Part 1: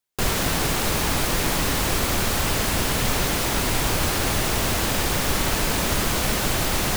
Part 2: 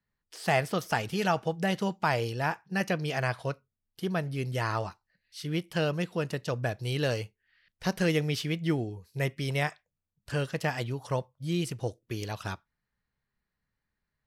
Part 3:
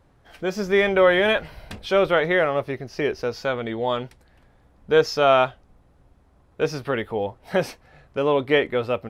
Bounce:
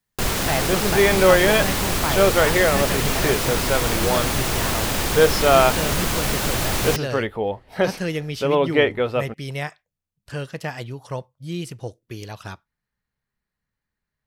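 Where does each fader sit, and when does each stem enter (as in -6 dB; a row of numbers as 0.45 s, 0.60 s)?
0.0 dB, +0.5 dB, +1.5 dB; 0.00 s, 0.00 s, 0.25 s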